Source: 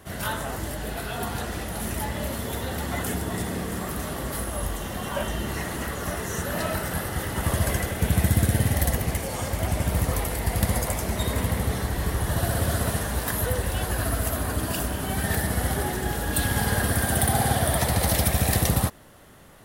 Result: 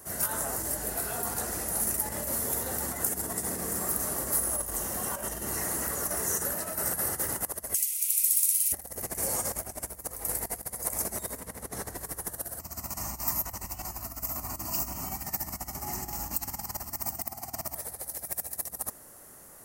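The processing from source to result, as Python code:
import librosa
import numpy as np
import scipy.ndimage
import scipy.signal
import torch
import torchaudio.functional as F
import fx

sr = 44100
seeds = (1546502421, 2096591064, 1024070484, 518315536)

y = fx.steep_highpass(x, sr, hz=2300.0, slope=72, at=(7.73, 8.72), fade=0.02)
y = fx.high_shelf(y, sr, hz=9500.0, db=-8.0, at=(11.4, 11.98))
y = fx.fixed_phaser(y, sr, hz=2400.0, stages=8, at=(12.59, 17.76))
y = fx.peak_eq(y, sr, hz=3400.0, db=-14.5, octaves=0.91)
y = fx.over_compress(y, sr, threshold_db=-30.0, ratio=-0.5)
y = fx.bass_treble(y, sr, bass_db=-7, treble_db=13)
y = y * librosa.db_to_amplitude(-6.0)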